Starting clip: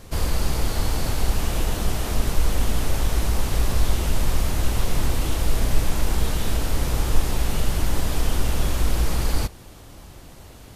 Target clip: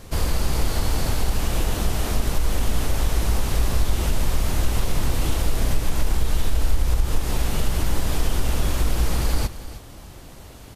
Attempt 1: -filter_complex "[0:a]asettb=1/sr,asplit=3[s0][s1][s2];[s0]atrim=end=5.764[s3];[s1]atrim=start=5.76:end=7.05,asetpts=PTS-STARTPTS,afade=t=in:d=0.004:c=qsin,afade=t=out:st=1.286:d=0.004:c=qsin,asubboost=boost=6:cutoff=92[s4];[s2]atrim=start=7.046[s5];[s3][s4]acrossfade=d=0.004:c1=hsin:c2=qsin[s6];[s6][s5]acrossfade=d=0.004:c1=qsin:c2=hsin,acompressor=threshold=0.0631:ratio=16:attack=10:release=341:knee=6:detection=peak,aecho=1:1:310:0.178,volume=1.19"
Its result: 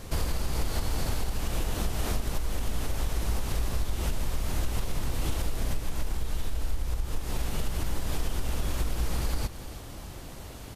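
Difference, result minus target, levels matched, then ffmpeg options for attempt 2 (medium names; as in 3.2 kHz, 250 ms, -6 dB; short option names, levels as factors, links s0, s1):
compression: peak gain reduction +10.5 dB
-filter_complex "[0:a]asettb=1/sr,asplit=3[s0][s1][s2];[s0]atrim=end=5.764[s3];[s1]atrim=start=5.76:end=7.05,asetpts=PTS-STARTPTS,afade=t=in:d=0.004:c=qsin,afade=t=out:st=1.286:d=0.004:c=qsin,asubboost=boost=6:cutoff=92[s4];[s2]atrim=start=7.046[s5];[s3][s4]acrossfade=d=0.004:c1=hsin:c2=qsin[s6];[s6][s5]acrossfade=d=0.004:c1=qsin:c2=hsin,acompressor=threshold=0.224:ratio=16:attack=10:release=341:knee=6:detection=peak,aecho=1:1:310:0.178,volume=1.19"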